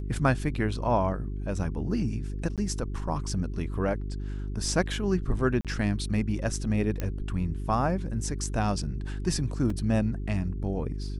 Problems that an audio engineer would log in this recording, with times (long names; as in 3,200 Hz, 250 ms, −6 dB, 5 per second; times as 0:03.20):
mains hum 50 Hz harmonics 8 −33 dBFS
0:02.56–0:02.58: drop-out 17 ms
0:05.61–0:05.65: drop-out 37 ms
0:07.00: click −17 dBFS
0:09.70: drop-out 3.1 ms